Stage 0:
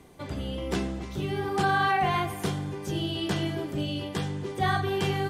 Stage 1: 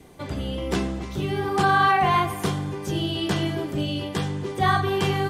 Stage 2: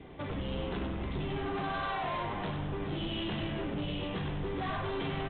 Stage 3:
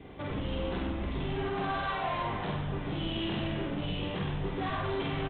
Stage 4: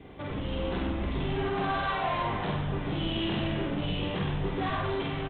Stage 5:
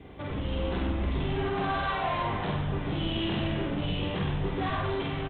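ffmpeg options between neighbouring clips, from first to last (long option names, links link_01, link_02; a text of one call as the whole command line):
ffmpeg -i in.wav -af "adynamicequalizer=threshold=0.00562:dfrequency=1100:dqfactor=5.5:tfrequency=1100:tqfactor=5.5:attack=5:release=100:ratio=0.375:range=3:mode=boostabove:tftype=bell,volume=4dB" out.wav
ffmpeg -i in.wav -filter_complex "[0:a]acompressor=threshold=-27dB:ratio=6,aresample=8000,asoftclip=type=tanh:threshold=-33.5dB,aresample=44100,asplit=8[link_01][link_02][link_03][link_04][link_05][link_06][link_07][link_08];[link_02]adelay=97,afreqshift=-110,volume=-5dB[link_09];[link_03]adelay=194,afreqshift=-220,volume=-10.2dB[link_10];[link_04]adelay=291,afreqshift=-330,volume=-15.4dB[link_11];[link_05]adelay=388,afreqshift=-440,volume=-20.6dB[link_12];[link_06]adelay=485,afreqshift=-550,volume=-25.8dB[link_13];[link_07]adelay=582,afreqshift=-660,volume=-31dB[link_14];[link_08]adelay=679,afreqshift=-770,volume=-36.2dB[link_15];[link_01][link_09][link_10][link_11][link_12][link_13][link_14][link_15]amix=inputs=8:normalize=0" out.wav
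ffmpeg -i in.wav -filter_complex "[0:a]asplit=2[link_01][link_02];[link_02]adelay=49,volume=-3dB[link_03];[link_01][link_03]amix=inputs=2:normalize=0" out.wav
ffmpeg -i in.wav -af "dynaudnorm=framelen=170:gausssize=7:maxgain=3dB" out.wav
ffmpeg -i in.wav -af "equalizer=frequency=71:width_type=o:width=0.83:gain=4.5" out.wav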